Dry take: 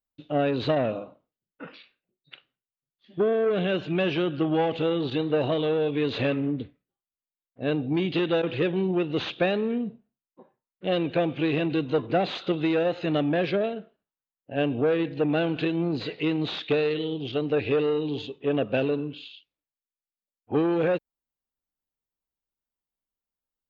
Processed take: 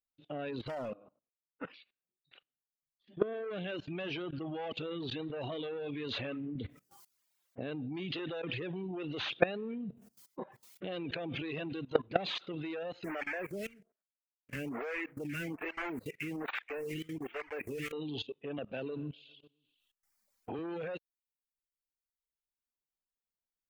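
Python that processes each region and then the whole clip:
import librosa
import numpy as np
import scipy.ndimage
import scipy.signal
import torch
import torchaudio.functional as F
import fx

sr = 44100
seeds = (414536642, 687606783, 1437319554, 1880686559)

y = fx.chain(x, sr, fx.lowpass(hz=2500.0, slope=12),
    fx.low_shelf(hz=120.0, db=-2.5),
    fx.clip_hard(threshold_db=-24.5), at=(0.59, 1.65))
y = fx.chain(y, sr, fx.highpass(hz=70.0, slope=12),
    fx.env_flatten(amount_pct=50), at=(6.55, 11.42))
y = fx.chain(y, sr, fx.block_float(bits=3),
    fx.high_shelf_res(hz=2900.0, db=-9.0, q=3.0),
    fx.stagger_phaser(hz=1.2), at=(13.04, 17.93))
y = fx.chain(y, sr, fx.echo_feedback(ms=131, feedback_pct=54, wet_db=-21),
    fx.band_squash(depth_pct=70), at=(18.58, 20.59))
y = fx.dereverb_blind(y, sr, rt60_s=1.2)
y = fx.level_steps(y, sr, step_db=20)
y = fx.dynamic_eq(y, sr, hz=1900.0, q=0.72, threshold_db=-56.0, ratio=4.0, max_db=3)
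y = F.gain(torch.from_numpy(y), 1.0).numpy()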